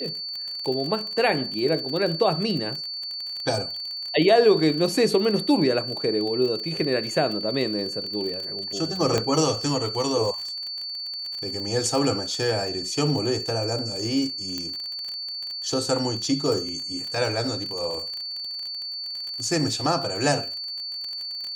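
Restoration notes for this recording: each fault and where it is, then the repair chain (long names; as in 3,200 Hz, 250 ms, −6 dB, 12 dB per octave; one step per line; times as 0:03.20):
surface crackle 35 per second −29 dBFS
whistle 4,500 Hz −30 dBFS
0:09.18: click −9 dBFS
0:14.58: click −15 dBFS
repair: click removal
notch filter 4,500 Hz, Q 30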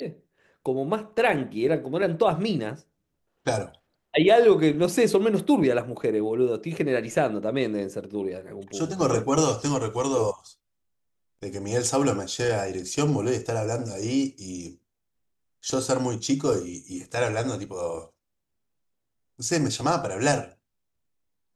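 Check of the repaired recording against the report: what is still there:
0:14.58: click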